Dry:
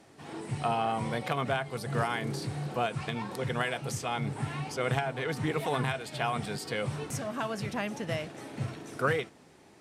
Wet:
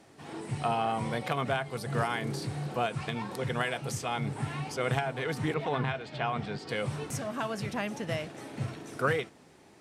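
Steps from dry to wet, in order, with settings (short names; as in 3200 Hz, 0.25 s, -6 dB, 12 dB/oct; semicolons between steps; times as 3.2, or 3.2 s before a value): 5.54–6.69 air absorption 150 m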